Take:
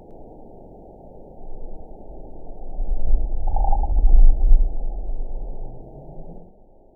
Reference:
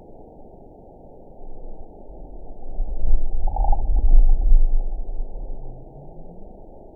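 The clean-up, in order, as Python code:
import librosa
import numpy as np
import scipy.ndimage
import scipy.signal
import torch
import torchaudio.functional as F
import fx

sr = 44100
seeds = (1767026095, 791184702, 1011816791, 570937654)

y = fx.fix_echo_inverse(x, sr, delay_ms=108, level_db=-4.0)
y = fx.gain(y, sr, db=fx.steps((0.0, 0.0), (6.38, 11.0)))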